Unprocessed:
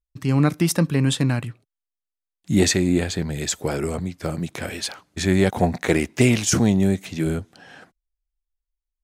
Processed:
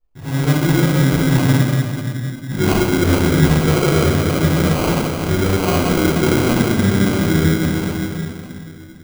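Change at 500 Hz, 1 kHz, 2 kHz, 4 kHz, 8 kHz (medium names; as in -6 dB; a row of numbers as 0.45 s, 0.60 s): +6.0 dB, +9.0 dB, +7.0 dB, +4.5 dB, 0.0 dB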